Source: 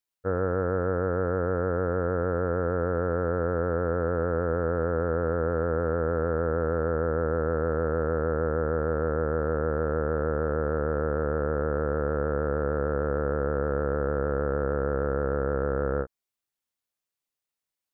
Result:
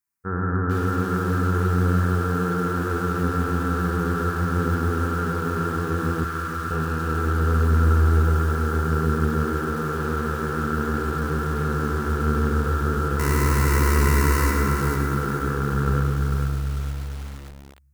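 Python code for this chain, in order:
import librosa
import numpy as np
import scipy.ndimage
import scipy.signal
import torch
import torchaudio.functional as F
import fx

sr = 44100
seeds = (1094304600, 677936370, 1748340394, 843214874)

p1 = fx.halfwave_hold(x, sr, at=(13.19, 14.51))
p2 = scipy.signal.sosfilt(scipy.signal.butter(2, 45.0, 'highpass', fs=sr, output='sos'), p1)
p3 = fx.low_shelf(p2, sr, hz=71.0, db=4.0)
p4 = fx.fixed_phaser(p3, sr, hz=1400.0, stages=4)
p5 = p4 + fx.echo_feedback(p4, sr, ms=101, feedback_pct=60, wet_db=-7.5, dry=0)
p6 = fx.room_shoebox(p5, sr, seeds[0], volume_m3=1500.0, walls='mixed', distance_m=1.2)
p7 = np.clip(10.0 ** (17.5 / 20.0) * p6, -1.0, 1.0) / 10.0 ** (17.5 / 20.0)
p8 = p6 + (p7 * librosa.db_to_amplitude(-5.0))
p9 = fx.ellip_bandstop(p8, sr, low_hz=110.0, high_hz=1100.0, order=3, stop_db=40, at=(6.24, 6.71))
y = fx.echo_crushed(p9, sr, ms=446, feedback_pct=35, bits=6, wet_db=-5.5)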